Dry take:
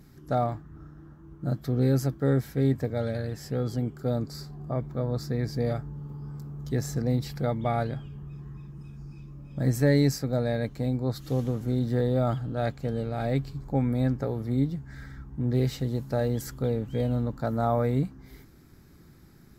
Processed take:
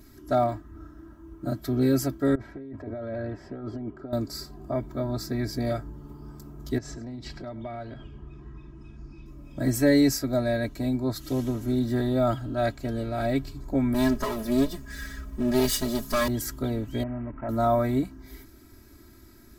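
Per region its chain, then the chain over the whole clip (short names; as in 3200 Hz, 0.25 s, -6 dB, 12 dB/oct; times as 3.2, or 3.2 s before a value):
2.35–4.13 LPF 1100 Hz + tilt +2 dB/oct + negative-ratio compressor -36 dBFS
6.78–9.26 air absorption 120 m + compressor 10:1, threshold -33 dBFS + echo 0.101 s -18.5 dB
13.94–16.28 minimum comb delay 0.61 ms + high shelf 3000 Hz +10 dB + comb 4.8 ms, depth 87%
17.03–17.49 CVSD 16 kbps + compressor 2:1, threshold -34 dBFS + steep low-pass 2000 Hz
whole clip: high shelf 5800 Hz +6 dB; comb 3.1 ms, depth 94%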